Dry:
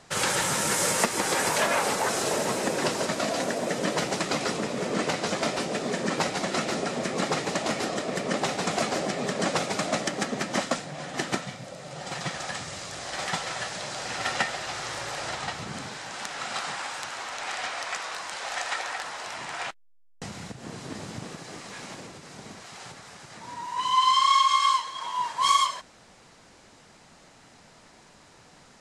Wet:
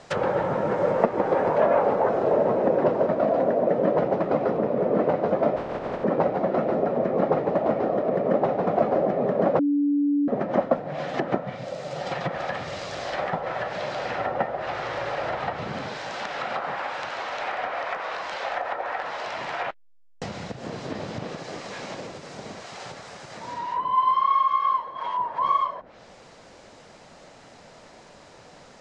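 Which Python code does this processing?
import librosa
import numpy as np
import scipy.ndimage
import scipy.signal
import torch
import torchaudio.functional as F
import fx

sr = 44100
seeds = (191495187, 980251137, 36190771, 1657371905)

y = fx.spec_flatten(x, sr, power=0.22, at=(5.55, 6.03), fade=0.02)
y = fx.edit(y, sr, fx.bleep(start_s=9.59, length_s=0.69, hz=288.0, db=-23.0), tone=tone)
y = fx.env_lowpass_down(y, sr, base_hz=960.0, full_db=-26.5)
y = scipy.signal.sosfilt(scipy.signal.butter(2, 7000.0, 'lowpass', fs=sr, output='sos'), y)
y = fx.peak_eq(y, sr, hz=560.0, db=7.5, octaves=0.89)
y = F.gain(torch.from_numpy(y), 3.0).numpy()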